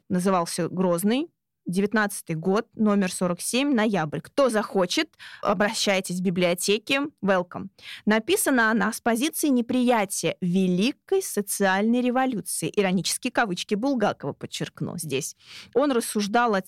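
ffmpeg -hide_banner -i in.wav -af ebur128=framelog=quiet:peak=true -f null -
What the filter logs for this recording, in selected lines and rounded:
Integrated loudness:
  I:         -24.2 LUFS
  Threshold: -34.3 LUFS
Loudness range:
  LRA:         2.9 LU
  Threshold: -44.2 LUFS
  LRA low:   -26.0 LUFS
  LRA high:  -23.1 LUFS
True peak:
  Peak:      -11.2 dBFS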